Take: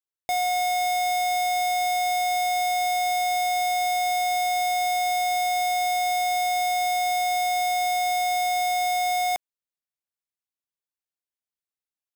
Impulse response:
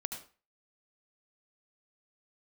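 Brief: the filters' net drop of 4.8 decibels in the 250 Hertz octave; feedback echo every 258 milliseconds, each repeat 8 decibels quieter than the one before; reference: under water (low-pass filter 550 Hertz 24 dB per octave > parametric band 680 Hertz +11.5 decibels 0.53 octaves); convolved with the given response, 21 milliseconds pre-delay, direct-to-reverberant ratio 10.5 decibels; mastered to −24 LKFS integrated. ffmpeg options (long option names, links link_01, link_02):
-filter_complex "[0:a]equalizer=frequency=250:width_type=o:gain=-8,aecho=1:1:258|516|774|1032|1290:0.398|0.159|0.0637|0.0255|0.0102,asplit=2[link_01][link_02];[1:a]atrim=start_sample=2205,adelay=21[link_03];[link_02][link_03]afir=irnorm=-1:irlink=0,volume=-11dB[link_04];[link_01][link_04]amix=inputs=2:normalize=0,lowpass=frequency=550:width=0.5412,lowpass=frequency=550:width=1.3066,equalizer=frequency=680:width_type=o:width=0.53:gain=11.5,volume=2dB"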